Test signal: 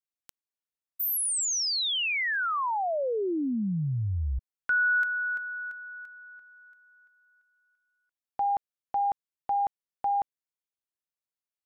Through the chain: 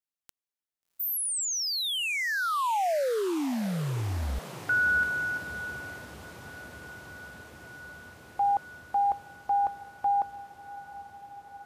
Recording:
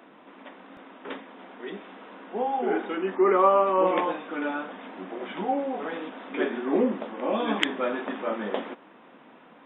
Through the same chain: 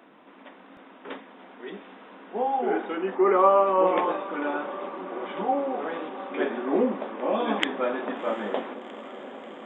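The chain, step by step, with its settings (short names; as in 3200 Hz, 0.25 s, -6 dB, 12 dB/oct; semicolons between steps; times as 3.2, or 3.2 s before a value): dynamic EQ 720 Hz, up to +4 dB, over -37 dBFS, Q 0.8; diffused feedback echo 0.729 s, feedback 78%, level -16 dB; gain -2 dB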